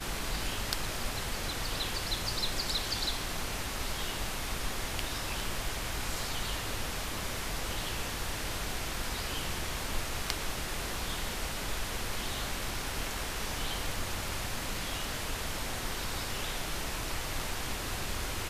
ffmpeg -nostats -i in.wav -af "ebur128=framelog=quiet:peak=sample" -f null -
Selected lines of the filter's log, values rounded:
Integrated loudness:
  I:         -34.7 LUFS
  Threshold: -44.7 LUFS
Loudness range:
  LRA:         2.1 LU
  Threshold: -54.7 LUFS
  LRA low:   -35.3 LUFS
  LRA high:  -33.2 LUFS
Sample peak:
  Peak:       -9.6 dBFS